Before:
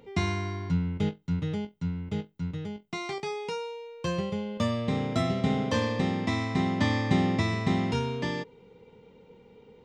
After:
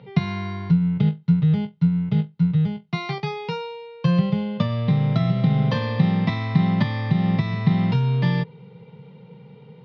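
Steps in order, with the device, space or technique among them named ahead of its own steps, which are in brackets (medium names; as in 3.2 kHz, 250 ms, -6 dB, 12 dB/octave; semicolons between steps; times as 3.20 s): jukebox (low-pass 7 kHz; resonant low shelf 190 Hz +13 dB, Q 3; compression 6:1, threshold -16 dBFS, peak gain reduction 11.5 dB); elliptic band-pass 160–4500 Hz, stop band 40 dB; trim +6.5 dB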